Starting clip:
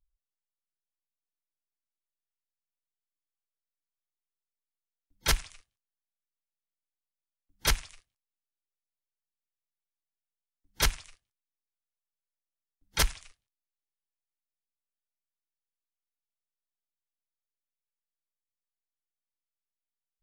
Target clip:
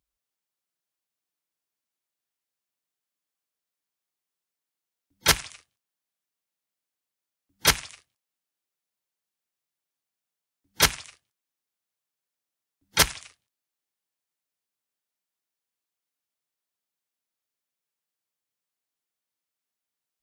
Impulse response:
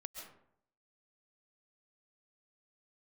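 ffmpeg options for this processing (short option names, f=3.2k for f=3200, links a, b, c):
-af "highpass=110,volume=7.5dB"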